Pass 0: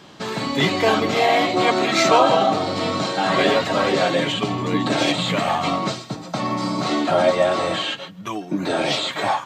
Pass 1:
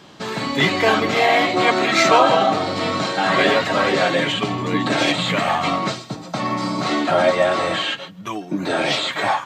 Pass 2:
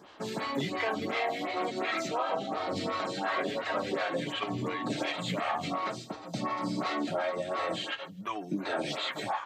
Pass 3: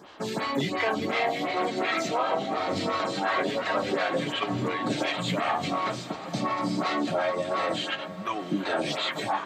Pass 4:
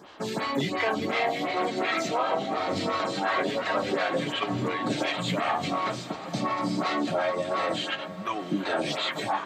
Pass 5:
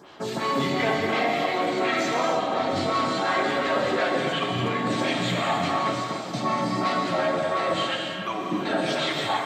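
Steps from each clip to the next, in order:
dynamic bell 1.8 kHz, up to +5 dB, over -33 dBFS, Q 1.2
compression, threshold -21 dBFS, peak gain reduction 12 dB; lamp-driven phase shifter 2.8 Hz; trim -5 dB
echo that smears into a reverb 763 ms, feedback 43%, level -14 dB; trim +4.5 dB
no audible change
gated-style reverb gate 340 ms flat, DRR 0 dB

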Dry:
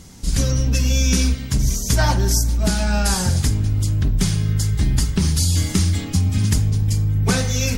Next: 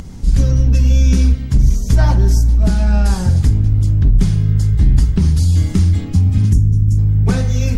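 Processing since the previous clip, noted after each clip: time-frequency box 6.52–6.98 s, 430–5300 Hz -14 dB; tilt EQ -2.5 dB/octave; upward compressor, threshold -21 dBFS; trim -2.5 dB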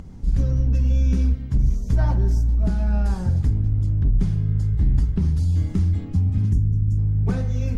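treble shelf 2.4 kHz -11.5 dB; trim -7.5 dB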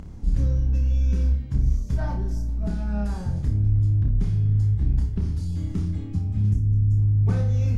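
gain riding 0.5 s; on a send: flutter echo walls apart 5 m, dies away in 0.34 s; on the sum: trim -5 dB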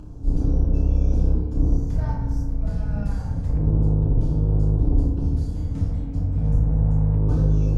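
octave divider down 1 oct, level +2 dB; LFO notch square 0.28 Hz 350–2000 Hz; FDN reverb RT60 1.2 s, low-frequency decay 0.85×, high-frequency decay 0.3×, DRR -1.5 dB; trim -5 dB

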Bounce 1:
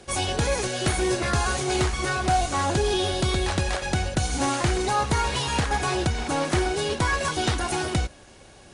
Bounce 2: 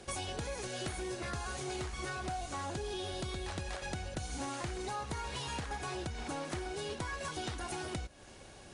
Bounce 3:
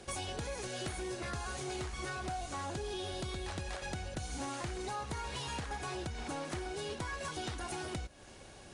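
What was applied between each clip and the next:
compression 6:1, threshold -33 dBFS, peak gain reduction 14 dB; trim -4 dB
saturation -27 dBFS, distortion -29 dB

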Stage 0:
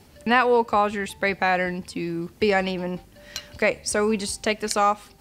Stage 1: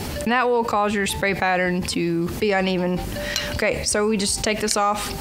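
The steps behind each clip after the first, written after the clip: level flattener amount 70%; trim -2 dB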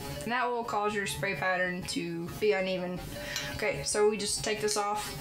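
feedback comb 140 Hz, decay 0.24 s, harmonics all, mix 90%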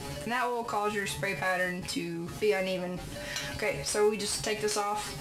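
CVSD coder 64 kbps

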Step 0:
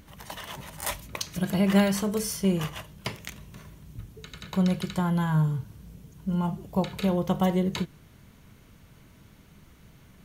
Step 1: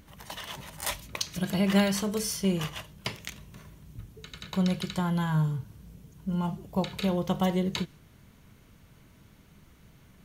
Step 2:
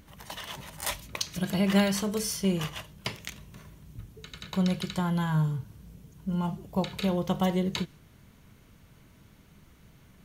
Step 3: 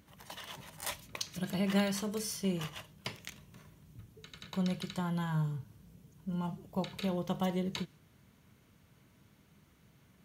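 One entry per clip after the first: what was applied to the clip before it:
dynamic bell 4.1 kHz, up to +5 dB, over -48 dBFS, Q 0.71; trim -2.5 dB
no audible change
high-pass 78 Hz; trim -6.5 dB

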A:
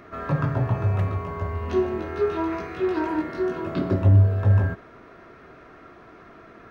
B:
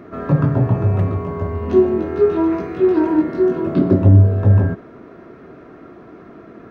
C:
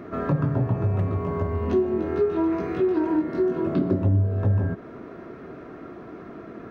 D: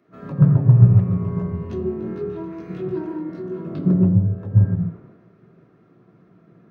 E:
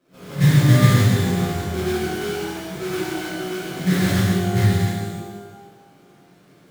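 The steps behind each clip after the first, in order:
peaking EQ 250 Hz +13.5 dB 3 oct; trim -2 dB
compression 2.5:1, threshold -23 dBFS, peak gain reduction 11.5 dB
on a send at -8 dB: reverberation RT60 0.30 s, pre-delay 77 ms; on the sum: three bands expanded up and down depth 70%; trim -6.5 dB
sample-rate reducer 1.9 kHz, jitter 20%; pitch-shifted reverb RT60 1.2 s, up +12 st, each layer -8 dB, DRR -8.5 dB; trim -7.5 dB

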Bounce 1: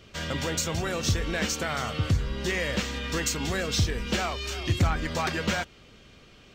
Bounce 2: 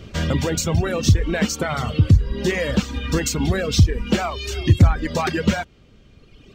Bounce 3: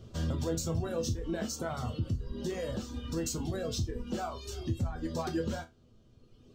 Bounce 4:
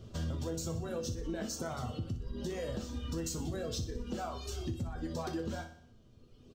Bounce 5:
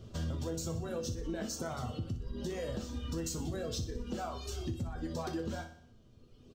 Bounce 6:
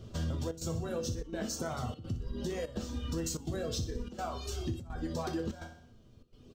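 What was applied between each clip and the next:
reverb removal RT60 1.8 s; bass shelf 480 Hz +11 dB; in parallel at -1 dB: compression, threshold -25 dBFS, peak gain reduction 15.5 dB
peaking EQ 2.2 kHz -14.5 dB 1 oct; peak limiter -15 dBFS, peak gain reduction 11 dB; chord resonator E2 sus4, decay 0.21 s
compression, threshold -34 dBFS, peak gain reduction 7.5 dB; feedback delay 61 ms, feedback 53%, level -12 dB
no audible change
trance gate "xxxxx.xxxxxx.x" 147 bpm -12 dB; trim +2 dB

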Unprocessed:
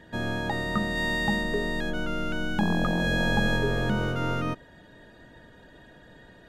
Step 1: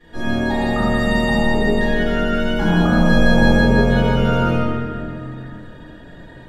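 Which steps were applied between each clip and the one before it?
reverberation RT60 2.6 s, pre-delay 3 ms, DRR -19.5 dB; trim -10.5 dB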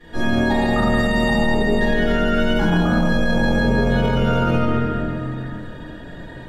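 loudness maximiser +12.5 dB; trim -8.5 dB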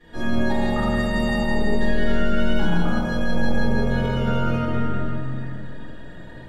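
Schroeder reverb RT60 1.9 s, combs from 27 ms, DRR 5 dB; trim -6 dB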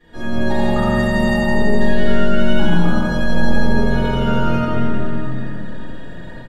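level rider gain up to 6 dB; on a send: delay 87 ms -6 dB; on the sum: trim -1 dB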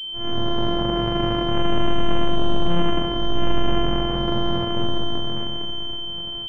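sorted samples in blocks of 128 samples; class-D stage that switches slowly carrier 3.1 kHz; trim -5.5 dB

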